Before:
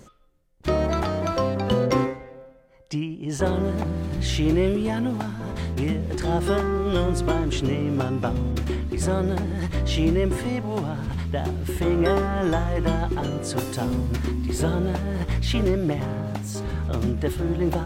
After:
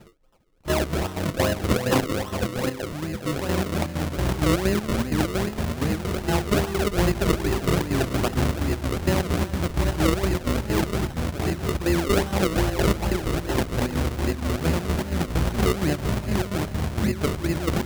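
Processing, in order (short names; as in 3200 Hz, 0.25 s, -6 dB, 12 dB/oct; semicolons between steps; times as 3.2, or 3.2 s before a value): split-band echo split 610 Hz, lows 0.716 s, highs 0.325 s, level -4 dB; chopper 4.3 Hz, depth 60%, duty 60%; decimation with a swept rate 37×, swing 100% 2.5 Hz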